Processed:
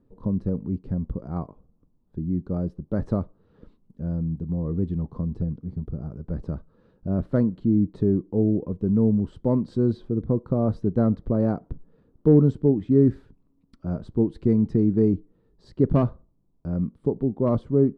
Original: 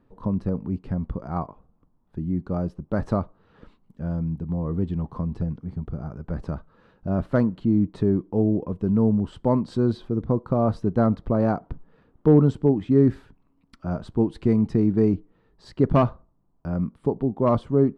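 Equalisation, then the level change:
flat-topped bell 1,400 Hz −8 dB 2.4 octaves
high-shelf EQ 2,500 Hz −10.5 dB
dynamic equaliser 1,900 Hz, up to +4 dB, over −50 dBFS, Q 1.4
0.0 dB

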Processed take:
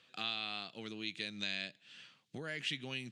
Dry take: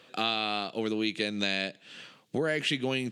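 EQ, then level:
high-frequency loss of the air 51 metres
guitar amp tone stack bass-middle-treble 5-5-5
low-shelf EQ 390 Hz +4.5 dB
+1.0 dB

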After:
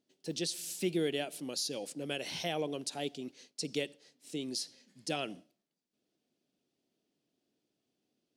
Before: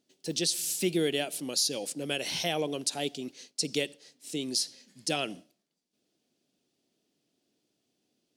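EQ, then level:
high-shelf EQ 3,800 Hz −6.5 dB
−4.0 dB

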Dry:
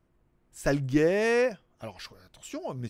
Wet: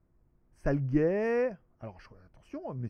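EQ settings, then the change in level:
moving average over 12 samples
low-shelf EQ 180 Hz +7 dB
−4.5 dB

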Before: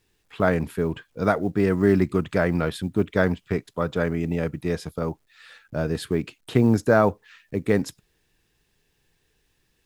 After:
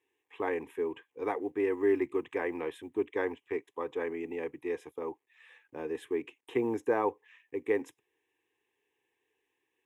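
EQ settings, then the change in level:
high-pass filter 300 Hz 12 dB per octave
low-pass filter 2,800 Hz 6 dB per octave
phaser with its sweep stopped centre 930 Hz, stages 8
−4.0 dB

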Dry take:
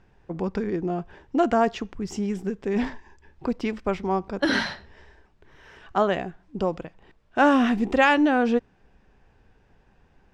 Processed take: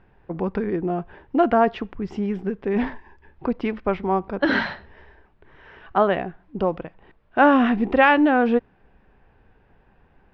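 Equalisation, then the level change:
high-frequency loss of the air 360 metres
low-shelf EQ 430 Hz −4.5 dB
+6.0 dB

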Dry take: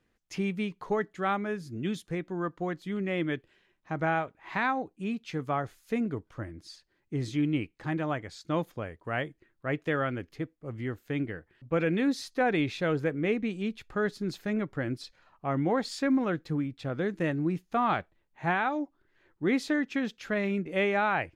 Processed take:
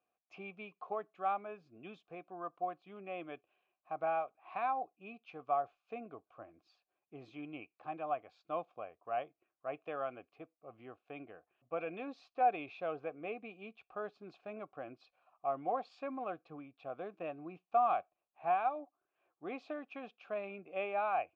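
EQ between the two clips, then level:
formant filter a
high-frequency loss of the air 100 metres
+3.0 dB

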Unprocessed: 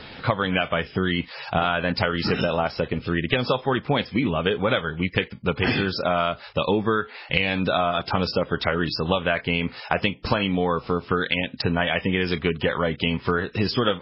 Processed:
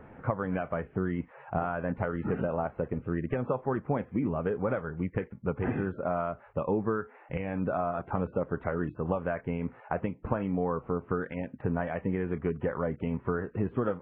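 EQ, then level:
Gaussian smoothing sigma 5.8 samples
−6.0 dB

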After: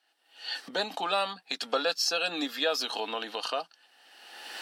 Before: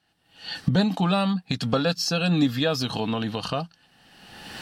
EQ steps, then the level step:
Bessel high-pass filter 530 Hz, order 6
notch filter 1,100 Hz, Q 21
−1.0 dB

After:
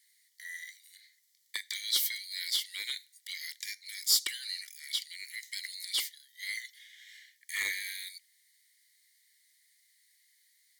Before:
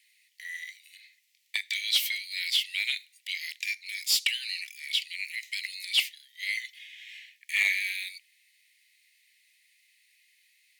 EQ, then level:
parametric band 280 Hz +4.5 dB 1.4 octaves
phaser with its sweep stopped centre 700 Hz, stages 6
+2.5 dB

